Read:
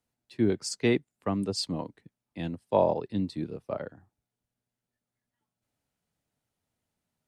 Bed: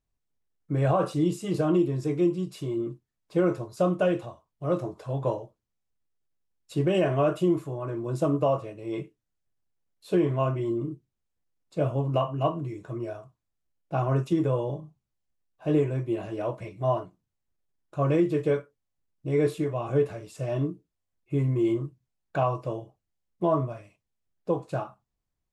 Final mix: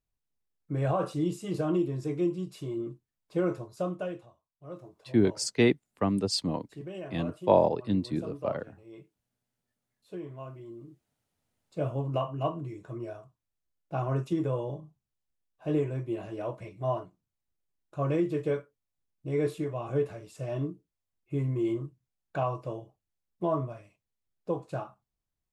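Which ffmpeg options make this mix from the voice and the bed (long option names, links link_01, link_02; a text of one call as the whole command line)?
ffmpeg -i stem1.wav -i stem2.wav -filter_complex "[0:a]adelay=4750,volume=2dB[link_01];[1:a]volume=7.5dB,afade=type=out:start_time=3.53:duration=0.75:silence=0.251189,afade=type=in:start_time=11.09:duration=0.78:silence=0.251189[link_02];[link_01][link_02]amix=inputs=2:normalize=0" out.wav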